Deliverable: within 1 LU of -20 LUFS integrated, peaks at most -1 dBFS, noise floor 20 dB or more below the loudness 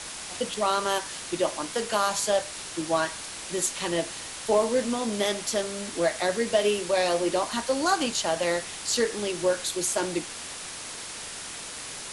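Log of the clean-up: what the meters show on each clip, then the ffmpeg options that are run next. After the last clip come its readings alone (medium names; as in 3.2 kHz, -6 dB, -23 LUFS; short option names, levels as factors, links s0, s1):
noise floor -39 dBFS; noise floor target -48 dBFS; loudness -27.5 LUFS; peak level -10.5 dBFS; loudness target -20.0 LUFS
-> -af "afftdn=nr=9:nf=-39"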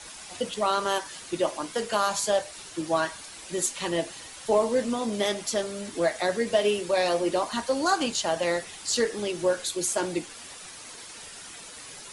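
noise floor -44 dBFS; noise floor target -48 dBFS
-> -af "afftdn=nr=6:nf=-44"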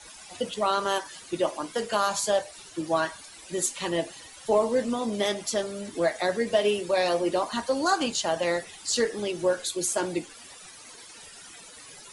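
noise floor -47 dBFS; noise floor target -48 dBFS
-> -af "afftdn=nr=6:nf=-47"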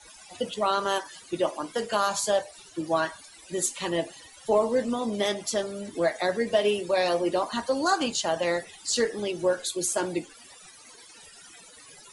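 noise floor -51 dBFS; loudness -27.5 LUFS; peak level -11.0 dBFS; loudness target -20.0 LUFS
-> -af "volume=2.37"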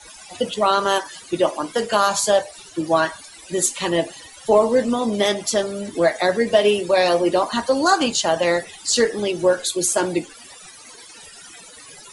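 loudness -20.0 LUFS; peak level -3.5 dBFS; noise floor -43 dBFS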